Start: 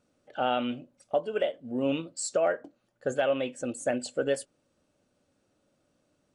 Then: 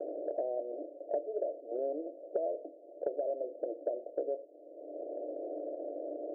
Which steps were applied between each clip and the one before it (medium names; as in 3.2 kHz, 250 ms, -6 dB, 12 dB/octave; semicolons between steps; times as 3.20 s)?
spectral levelling over time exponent 0.6; Chebyshev band-pass 300–700 Hz, order 5; three bands compressed up and down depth 100%; trim -7.5 dB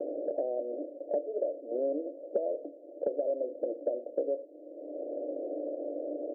peaking EQ 210 Hz +14.5 dB 2.3 oct; comb 3.7 ms, depth 33%; dynamic bell 320 Hz, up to -7 dB, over -48 dBFS, Q 7.7; trim -3.5 dB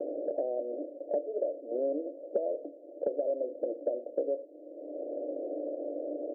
no audible change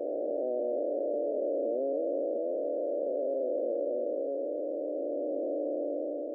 spectral blur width 1060 ms; trim +6.5 dB